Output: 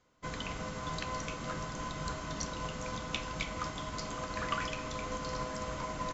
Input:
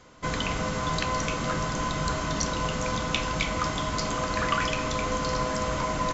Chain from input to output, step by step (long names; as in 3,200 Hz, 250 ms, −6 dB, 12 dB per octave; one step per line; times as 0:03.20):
expander for the loud parts 1.5 to 1, over −44 dBFS
level −7.5 dB